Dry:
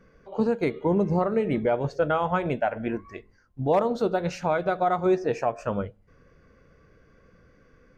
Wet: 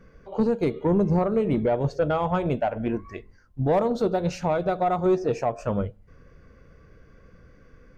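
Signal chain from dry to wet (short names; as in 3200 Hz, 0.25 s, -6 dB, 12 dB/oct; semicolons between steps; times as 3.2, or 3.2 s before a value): dynamic EQ 1800 Hz, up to -8 dB, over -45 dBFS, Q 1.5; soft clip -16 dBFS, distortion -20 dB; low shelf 110 Hz +7.5 dB; gain +2 dB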